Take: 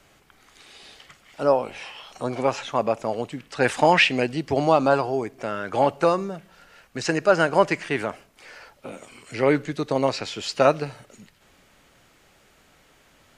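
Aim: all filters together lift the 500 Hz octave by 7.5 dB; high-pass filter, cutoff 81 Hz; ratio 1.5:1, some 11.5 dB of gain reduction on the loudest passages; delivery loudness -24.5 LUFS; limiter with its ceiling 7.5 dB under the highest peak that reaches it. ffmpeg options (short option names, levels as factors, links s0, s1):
-af "highpass=81,equalizer=f=500:t=o:g=9,acompressor=threshold=0.01:ratio=1.5,volume=2,alimiter=limit=0.266:level=0:latency=1"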